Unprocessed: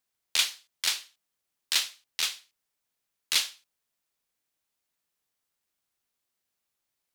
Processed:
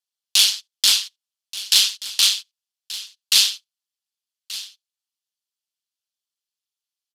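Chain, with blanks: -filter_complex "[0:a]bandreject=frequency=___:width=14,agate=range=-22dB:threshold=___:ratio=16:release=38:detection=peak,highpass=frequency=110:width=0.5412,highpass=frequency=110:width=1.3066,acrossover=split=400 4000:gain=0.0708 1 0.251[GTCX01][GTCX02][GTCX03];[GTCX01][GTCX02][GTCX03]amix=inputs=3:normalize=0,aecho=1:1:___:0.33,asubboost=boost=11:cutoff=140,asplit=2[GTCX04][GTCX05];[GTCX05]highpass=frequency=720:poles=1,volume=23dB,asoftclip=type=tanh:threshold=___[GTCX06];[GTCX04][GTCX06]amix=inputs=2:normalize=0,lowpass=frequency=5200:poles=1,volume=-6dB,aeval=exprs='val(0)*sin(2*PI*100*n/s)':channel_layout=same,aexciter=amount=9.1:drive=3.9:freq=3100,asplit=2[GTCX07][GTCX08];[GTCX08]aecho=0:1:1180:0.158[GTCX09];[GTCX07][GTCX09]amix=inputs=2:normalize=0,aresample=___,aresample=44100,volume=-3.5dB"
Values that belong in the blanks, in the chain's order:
3800, -60dB, 5.5, -13dB, 32000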